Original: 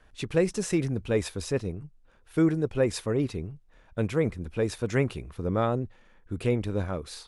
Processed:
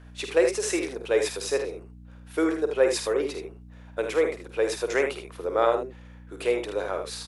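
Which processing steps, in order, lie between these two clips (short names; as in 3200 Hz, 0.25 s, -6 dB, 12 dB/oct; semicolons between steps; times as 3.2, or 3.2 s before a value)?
inverse Chebyshev high-pass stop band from 190 Hz, stop band 40 dB; hum 60 Hz, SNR 20 dB; early reflections 50 ms -8.5 dB, 78 ms -7.5 dB; gain +4.5 dB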